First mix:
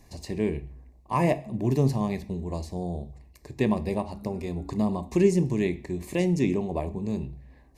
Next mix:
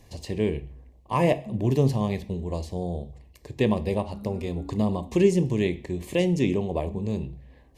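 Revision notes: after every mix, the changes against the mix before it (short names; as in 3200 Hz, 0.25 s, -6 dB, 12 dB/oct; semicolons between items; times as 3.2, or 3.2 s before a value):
first voice: add thirty-one-band EQ 100 Hz +8 dB, 500 Hz +7 dB, 3150 Hz +11 dB; second voice +4.0 dB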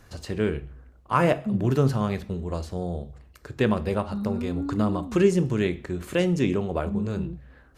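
first voice: remove Butterworth band-stop 1400 Hz, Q 1.7; second voice +10.5 dB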